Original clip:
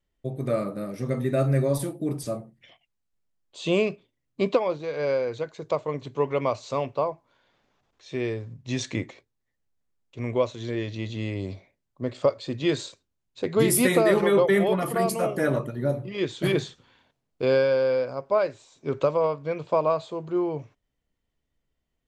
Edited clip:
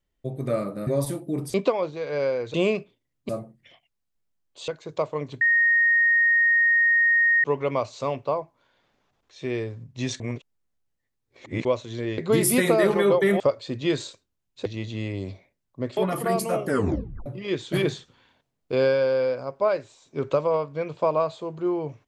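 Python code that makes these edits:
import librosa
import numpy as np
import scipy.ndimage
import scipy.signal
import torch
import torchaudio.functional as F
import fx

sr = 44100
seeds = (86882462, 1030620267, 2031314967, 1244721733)

y = fx.edit(x, sr, fx.cut(start_s=0.87, length_s=0.73),
    fx.swap(start_s=2.27, length_s=1.39, other_s=4.41, other_length_s=1.0),
    fx.insert_tone(at_s=6.14, length_s=2.03, hz=1860.0, db=-16.0),
    fx.reverse_span(start_s=8.9, length_s=1.45),
    fx.swap(start_s=10.88, length_s=1.31, other_s=13.45, other_length_s=1.22),
    fx.tape_stop(start_s=15.37, length_s=0.59), tone=tone)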